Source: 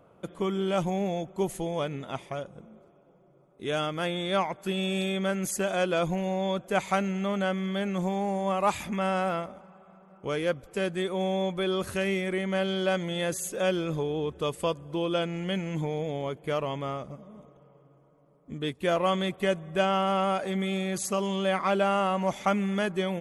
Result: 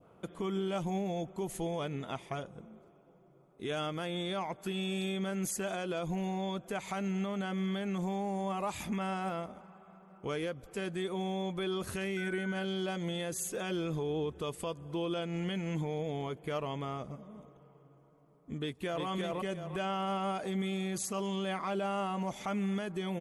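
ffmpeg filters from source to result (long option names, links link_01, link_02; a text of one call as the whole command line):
ffmpeg -i in.wav -filter_complex "[0:a]asettb=1/sr,asplit=3[link_01][link_02][link_03];[link_01]atrim=end=12.174[link_04];[link_02]atrim=start=12.17:end=12.65,asetpts=PTS-STARTPTS,afade=type=in:duration=0.004:curve=qsin,afade=type=out:start_time=0.476:duration=0.004:curve=qsin,aeval=exprs='val(0)+0.0224*sin(2*PI*1500*n/s)':channel_layout=same[link_05];[link_03]atrim=start=12.646[link_06];[link_04][link_05]acrossfade=duration=0.004:curve1=hsin:curve2=qsin[link_07];[link_07][link_06]acrossfade=duration=0.004:curve1=qsin:curve2=hsin,asplit=2[link_08][link_09];[link_09]afade=type=in:start_time=18.58:duration=0.01,afade=type=out:start_time=19.06:duration=0.01,aecho=0:1:350|700|1050:0.841395|0.168279|0.0336558[link_10];[link_08][link_10]amix=inputs=2:normalize=0,bandreject=frequency=560:width=12,adynamicequalizer=threshold=0.01:dfrequency=1700:dqfactor=0.8:tfrequency=1700:tqfactor=0.8:attack=5:release=100:ratio=0.375:range=2.5:mode=cutabove:tftype=bell,alimiter=level_in=0.5dB:limit=-24dB:level=0:latency=1:release=116,volume=-0.5dB,volume=-1.5dB" out.wav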